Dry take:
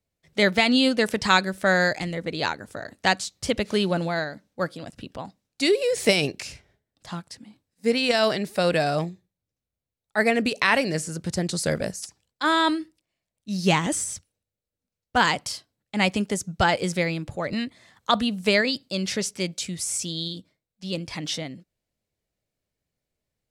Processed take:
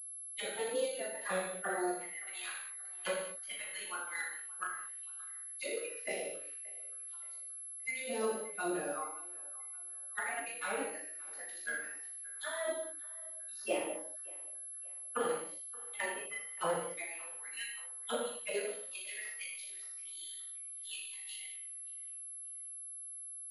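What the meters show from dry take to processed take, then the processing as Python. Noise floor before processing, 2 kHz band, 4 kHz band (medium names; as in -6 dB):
under -85 dBFS, -15.5 dB, -20.0 dB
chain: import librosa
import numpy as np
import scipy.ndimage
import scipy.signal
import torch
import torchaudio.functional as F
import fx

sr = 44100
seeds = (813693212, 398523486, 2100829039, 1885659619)

y = fx.bin_expand(x, sr, power=2.0)
y = scipy.signal.sosfilt(scipy.signal.butter(4, 100.0, 'highpass', fs=sr, output='sos'), y)
y = fx.spec_gate(y, sr, threshold_db=-15, keep='weak')
y = fx.auto_wah(y, sr, base_hz=490.0, top_hz=4000.0, q=2.6, full_db=-36.5, direction='down')
y = fx.echo_banded(y, sr, ms=575, feedback_pct=58, hz=1400.0, wet_db=-19.5)
y = fx.rev_gated(y, sr, seeds[0], gate_ms=260, shape='falling', drr_db=-5.5)
y = np.repeat(scipy.signal.resample_poly(y, 1, 4), 4)[:len(y)]
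y = fx.pwm(y, sr, carrier_hz=11000.0)
y = y * 10.0 ** (8.0 / 20.0)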